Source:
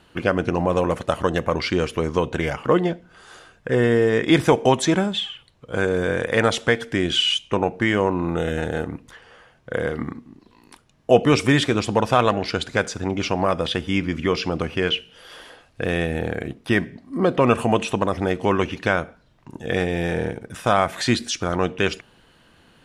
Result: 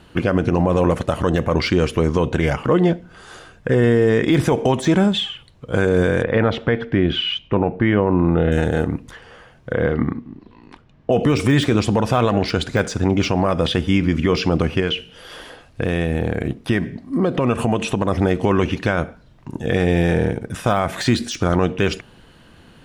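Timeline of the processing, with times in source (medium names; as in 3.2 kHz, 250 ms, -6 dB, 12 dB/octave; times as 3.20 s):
6.23–8.52 s: distance through air 350 m
9.73–11.12 s: low-pass 3.2 kHz
14.80–18.08 s: compression 2.5:1, threshold -24 dBFS
whole clip: de-esser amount 60%; bass shelf 340 Hz +6.5 dB; peak limiter -11 dBFS; trim +4 dB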